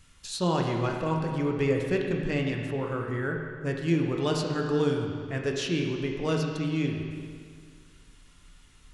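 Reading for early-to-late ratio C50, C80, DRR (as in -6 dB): 3.0 dB, 4.0 dB, 1.0 dB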